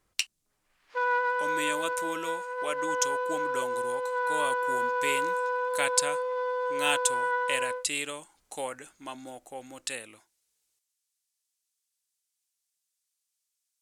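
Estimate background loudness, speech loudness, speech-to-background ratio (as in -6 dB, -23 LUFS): -30.0 LUFS, -33.5 LUFS, -3.5 dB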